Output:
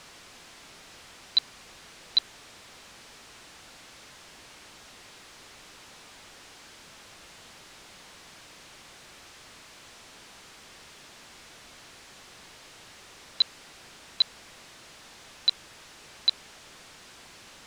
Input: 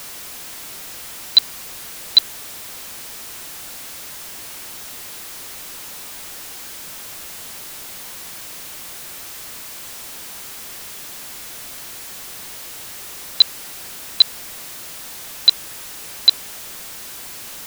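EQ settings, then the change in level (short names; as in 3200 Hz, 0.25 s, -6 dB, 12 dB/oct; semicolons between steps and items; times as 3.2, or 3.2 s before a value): air absorption 83 m; -9.0 dB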